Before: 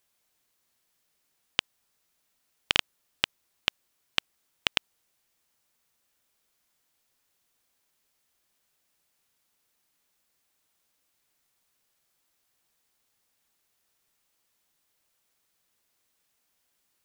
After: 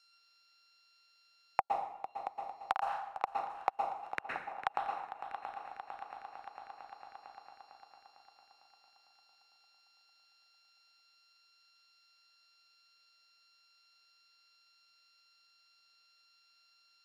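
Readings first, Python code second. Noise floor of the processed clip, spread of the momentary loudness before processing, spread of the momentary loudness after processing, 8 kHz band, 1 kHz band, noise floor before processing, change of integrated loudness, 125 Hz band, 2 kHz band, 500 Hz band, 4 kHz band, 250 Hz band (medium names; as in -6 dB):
-69 dBFS, 5 LU, 18 LU, under -20 dB, +10.5 dB, -75 dBFS, -9.5 dB, under -10 dB, -10.0 dB, +3.0 dB, -24.0 dB, -10.0 dB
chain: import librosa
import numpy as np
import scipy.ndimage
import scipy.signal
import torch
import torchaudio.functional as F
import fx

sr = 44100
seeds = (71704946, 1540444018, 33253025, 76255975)

y = np.r_[np.sort(x[:len(x) // 32 * 32].reshape(-1, 32), axis=1).ravel(), x[len(x) // 32 * 32:]]
y = fx.auto_wah(y, sr, base_hz=780.0, top_hz=4800.0, q=11.0, full_db=-42.0, direction='down')
y = fx.echo_heads(y, sr, ms=226, heads='second and third', feedback_pct=48, wet_db=-18)
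y = fx.rev_plate(y, sr, seeds[0], rt60_s=0.59, hf_ratio=0.9, predelay_ms=105, drr_db=1.0)
y = fx.band_squash(y, sr, depth_pct=70)
y = y * librosa.db_to_amplitude(11.0)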